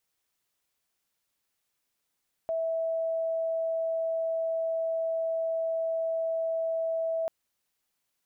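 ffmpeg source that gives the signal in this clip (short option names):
-f lavfi -i "aevalsrc='0.0473*sin(2*PI*654*t)':d=4.79:s=44100"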